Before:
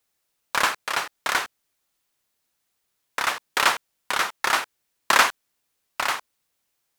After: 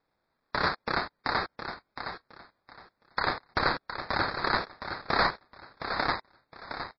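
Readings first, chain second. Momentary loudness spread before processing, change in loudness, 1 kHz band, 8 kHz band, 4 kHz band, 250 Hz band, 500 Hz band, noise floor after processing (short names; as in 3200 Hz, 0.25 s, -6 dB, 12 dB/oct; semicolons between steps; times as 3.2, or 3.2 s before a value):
13 LU, -7.5 dB, -5.0 dB, under -40 dB, -7.0 dB, +4.5 dB, 0.0 dB, -79 dBFS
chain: HPF 290 Hz 12 dB/oct; limiter -10 dBFS, peak gain reduction 7.5 dB; sample-and-hold 15×; feedback echo 0.714 s, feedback 22%, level -8.5 dB; gain -3 dB; MP3 24 kbps 16000 Hz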